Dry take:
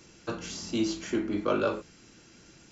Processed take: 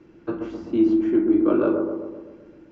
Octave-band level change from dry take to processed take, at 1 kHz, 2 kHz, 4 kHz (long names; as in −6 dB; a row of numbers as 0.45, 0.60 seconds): +0.5 dB, −2.5 dB, below −10 dB